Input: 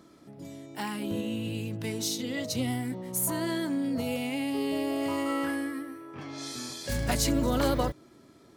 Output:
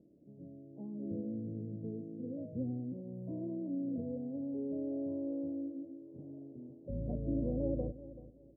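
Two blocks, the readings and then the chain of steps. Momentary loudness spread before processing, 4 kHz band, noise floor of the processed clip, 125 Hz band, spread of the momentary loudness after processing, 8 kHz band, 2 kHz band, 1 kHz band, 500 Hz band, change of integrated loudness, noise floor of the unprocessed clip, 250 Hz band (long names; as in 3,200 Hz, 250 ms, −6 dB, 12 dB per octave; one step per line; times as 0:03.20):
13 LU, below −40 dB, −59 dBFS, −7.0 dB, 14 LU, below −40 dB, below −40 dB, below −25 dB, −9.0 dB, −9.0 dB, −56 dBFS, −7.0 dB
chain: elliptic low-pass filter 580 Hz, stop band 60 dB
parametric band 170 Hz +3 dB
repeating echo 383 ms, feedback 27%, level −16 dB
level −8 dB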